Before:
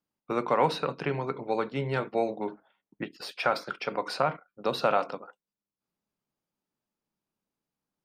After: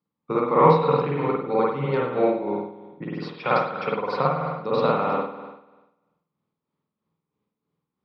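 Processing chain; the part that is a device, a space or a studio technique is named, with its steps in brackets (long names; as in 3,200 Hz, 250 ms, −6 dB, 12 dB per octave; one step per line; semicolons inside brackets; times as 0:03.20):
combo amplifier with spring reverb and tremolo (spring reverb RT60 1.1 s, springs 49 ms, chirp 70 ms, DRR −6 dB; amplitude tremolo 3.1 Hz, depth 52%; loudspeaker in its box 86–4,300 Hz, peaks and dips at 160 Hz +7 dB, 460 Hz +5 dB, 660 Hz −6 dB, 1,100 Hz +5 dB, 1,600 Hz −7 dB, 2,800 Hz −6 dB)
low-shelf EQ 180 Hz +5.5 dB
level +1 dB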